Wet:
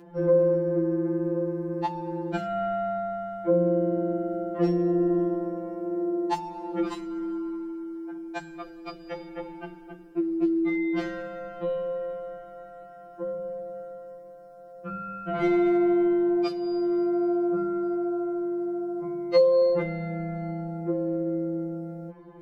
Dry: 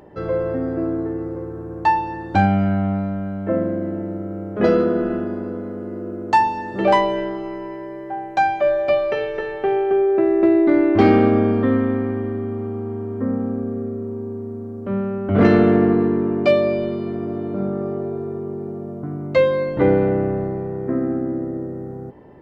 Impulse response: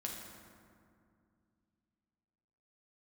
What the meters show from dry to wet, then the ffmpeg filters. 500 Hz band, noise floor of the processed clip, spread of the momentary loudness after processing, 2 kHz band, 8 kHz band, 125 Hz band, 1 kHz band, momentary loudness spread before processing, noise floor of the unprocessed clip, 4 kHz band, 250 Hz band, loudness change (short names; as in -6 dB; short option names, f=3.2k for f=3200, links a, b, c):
-6.5 dB, -46 dBFS, 18 LU, -12.5 dB, n/a, -10.5 dB, -12.5 dB, 15 LU, -32 dBFS, -9.0 dB, -7.0 dB, -7.0 dB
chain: -filter_complex "[0:a]acrossover=split=140|3000[a][b][c];[b]acompressor=threshold=-21dB:ratio=6[d];[a][d][c]amix=inputs=3:normalize=0,afftfilt=real='re*2.83*eq(mod(b,8),0)':imag='im*2.83*eq(mod(b,8),0)':win_size=2048:overlap=0.75"